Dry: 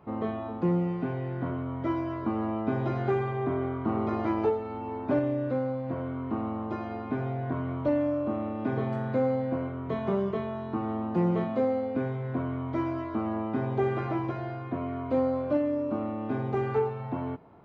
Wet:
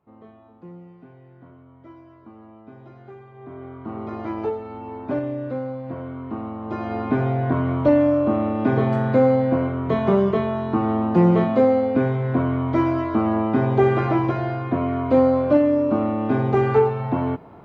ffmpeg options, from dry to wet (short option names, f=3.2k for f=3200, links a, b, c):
-af "volume=10dB,afade=t=in:st=3.31:d=0.36:silence=0.354813,afade=t=in:st=3.67:d=0.93:silence=0.421697,afade=t=in:st=6.61:d=0.4:silence=0.354813"